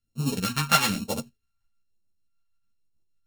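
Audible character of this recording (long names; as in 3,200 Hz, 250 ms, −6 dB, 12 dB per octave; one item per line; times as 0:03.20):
a buzz of ramps at a fixed pitch in blocks of 32 samples
phaser sweep stages 2, 1.1 Hz, lowest notch 380–1,600 Hz
tremolo saw up 6.6 Hz, depth 45%
a shimmering, thickened sound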